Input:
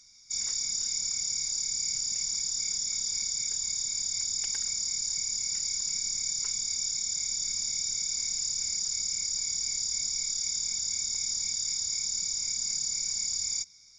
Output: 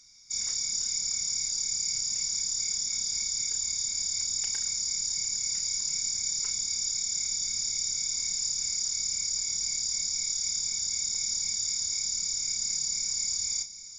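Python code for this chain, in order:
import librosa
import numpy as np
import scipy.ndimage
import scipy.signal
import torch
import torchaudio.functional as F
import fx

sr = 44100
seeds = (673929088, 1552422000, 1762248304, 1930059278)

y = fx.doubler(x, sr, ms=33.0, db=-8.5)
y = fx.echo_feedback(y, sr, ms=806, feedback_pct=59, wet_db=-16)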